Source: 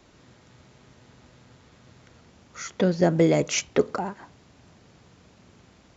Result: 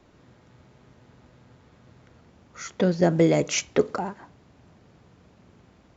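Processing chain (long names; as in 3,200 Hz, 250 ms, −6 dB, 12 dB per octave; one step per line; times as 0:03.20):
on a send at −23 dB: convolution reverb RT60 0.45 s, pre-delay 6 ms
on the sum: one half of a high-frequency compander decoder only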